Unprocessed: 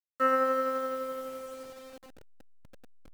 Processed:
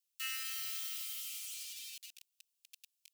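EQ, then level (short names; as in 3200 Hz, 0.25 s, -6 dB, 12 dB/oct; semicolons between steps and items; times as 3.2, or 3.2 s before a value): elliptic high-pass 2600 Hz, stop band 80 dB; tilt +1.5 dB/oct; +8.0 dB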